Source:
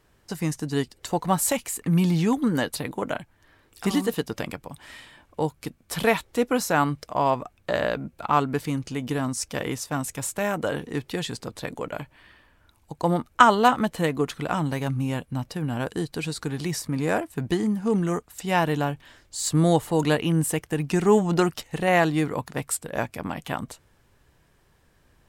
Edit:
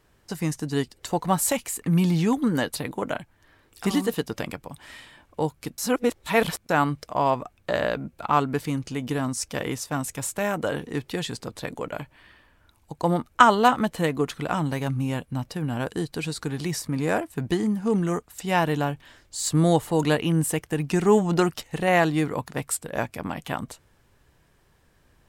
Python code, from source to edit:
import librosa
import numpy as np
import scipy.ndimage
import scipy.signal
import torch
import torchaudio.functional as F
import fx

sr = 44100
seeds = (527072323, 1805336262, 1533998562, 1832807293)

y = fx.edit(x, sr, fx.reverse_span(start_s=5.78, length_s=0.91), tone=tone)